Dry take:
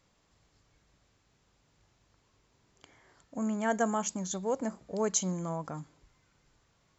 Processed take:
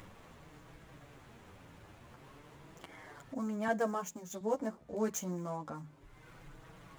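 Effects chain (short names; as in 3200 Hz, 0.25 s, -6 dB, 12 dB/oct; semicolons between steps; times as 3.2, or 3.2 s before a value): median filter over 9 samples; notches 50/100/150 Hz; upward compressor, threshold -35 dBFS; chorus voices 2, 0.3 Hz, delay 10 ms, depth 3.9 ms; 3.68–4.41 three-band expander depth 40%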